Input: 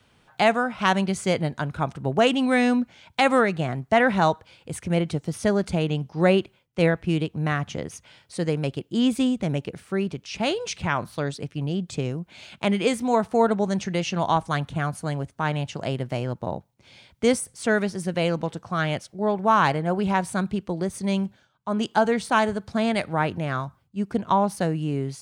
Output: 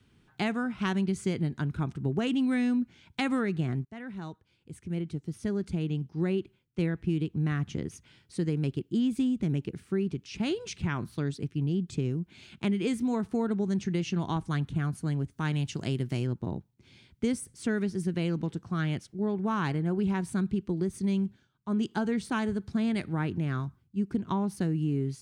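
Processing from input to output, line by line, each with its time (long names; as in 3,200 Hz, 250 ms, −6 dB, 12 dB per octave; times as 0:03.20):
0:03.85–0:07.52: fade in, from −19 dB
0:15.31–0:16.27: high-shelf EQ 3,000 Hz +9.5 dB
whole clip: drawn EQ curve 380 Hz 0 dB, 560 Hz −16 dB, 1,600 Hz −8 dB; downward compressor, threshold −24 dBFS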